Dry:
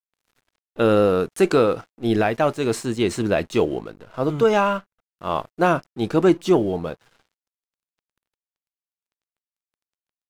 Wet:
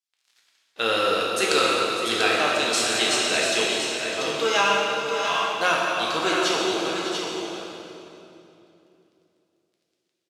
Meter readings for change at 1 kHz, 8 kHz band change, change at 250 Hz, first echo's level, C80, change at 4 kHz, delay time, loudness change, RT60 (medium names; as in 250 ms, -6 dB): +1.0 dB, +11.0 dB, -9.0 dB, -12.0 dB, -1.5 dB, +13.0 dB, 602 ms, -1.0 dB, 2.9 s